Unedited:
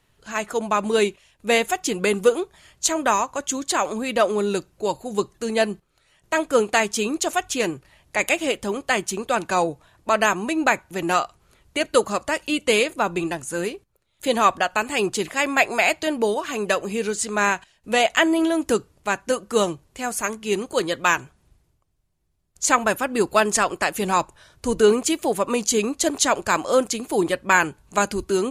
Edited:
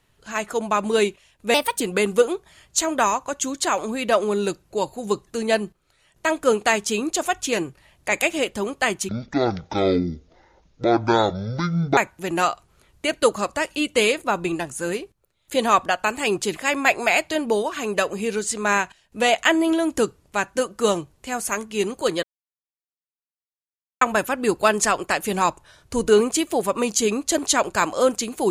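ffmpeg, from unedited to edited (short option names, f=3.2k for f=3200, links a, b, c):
-filter_complex "[0:a]asplit=7[a][b][c][d][e][f][g];[a]atrim=end=1.544[h];[b]atrim=start=1.54:end=1.88,asetpts=PTS-STARTPTS,asetrate=56448,aresample=44100,atrim=end_sample=11714,asetpts=PTS-STARTPTS[i];[c]atrim=start=1.876:end=9.164[j];[d]atrim=start=9.16:end=10.69,asetpts=PTS-STARTPTS,asetrate=23373,aresample=44100[k];[e]atrim=start=10.686:end=20.95,asetpts=PTS-STARTPTS,afade=t=out:st=10.26:d=0.004:c=hsin[l];[f]atrim=start=20.95:end=22.73,asetpts=PTS-STARTPTS,volume=0[m];[g]atrim=start=22.73,asetpts=PTS-STARTPTS,afade=t=in:d=0.004:c=hsin[n];[h][i]acrossfade=d=0.004:c1=hsin:c2=hsin[o];[o][j]acrossfade=d=0.004:c1=hsin:c2=hsin[p];[p][k]acrossfade=d=0.004:c1=hsin:c2=hsin[q];[l][m][n]concat=n=3:v=0:a=1[r];[q][r]acrossfade=d=0.004:c1=hsin:c2=hsin"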